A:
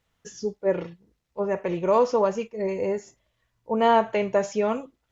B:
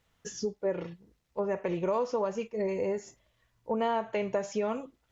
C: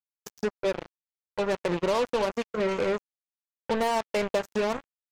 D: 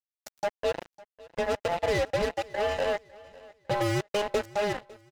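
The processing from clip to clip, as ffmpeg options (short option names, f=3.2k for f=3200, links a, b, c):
-af "acompressor=threshold=-31dB:ratio=3,volume=1.5dB"
-af "acrusher=bits=4:mix=0:aa=0.5,volume=3dB"
-af "afftfilt=real='real(if(between(b,1,1008),(2*floor((b-1)/48)+1)*48-b,b),0)':imag='imag(if(between(b,1,1008),(2*floor((b-1)/48)+1)*48-b,b),0)*if(between(b,1,1008),-1,1)':win_size=2048:overlap=0.75,aeval=exprs='sgn(val(0))*max(abs(val(0))-0.00891,0)':c=same,aecho=1:1:553|1106|1659:0.0794|0.0286|0.0103"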